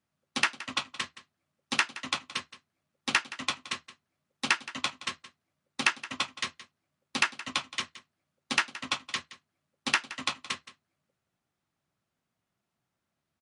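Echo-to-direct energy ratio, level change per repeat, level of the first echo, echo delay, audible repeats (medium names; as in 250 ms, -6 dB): -16.5 dB, no regular repeats, -16.5 dB, 171 ms, 1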